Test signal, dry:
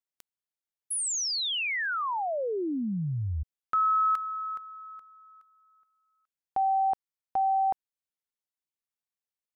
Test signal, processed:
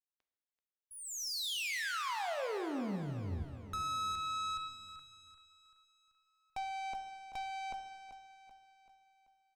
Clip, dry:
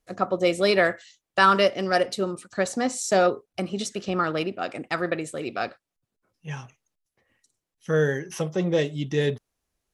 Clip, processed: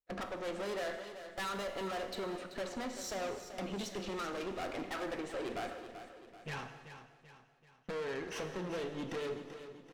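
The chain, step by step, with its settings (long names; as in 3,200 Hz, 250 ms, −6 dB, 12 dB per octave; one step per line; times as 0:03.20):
wavefolder on the positive side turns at −15 dBFS
noise gate −43 dBFS, range −25 dB
low-pass filter 3,200 Hz 12 dB per octave
parametric band 130 Hz −13 dB 0.76 octaves
downward compressor 5 to 1, threshold −33 dBFS
tube saturation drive 43 dB, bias 0.55
repeating echo 385 ms, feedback 48%, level −11 dB
reverb whose tail is shaped and stops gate 440 ms falling, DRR 7 dB
level +5.5 dB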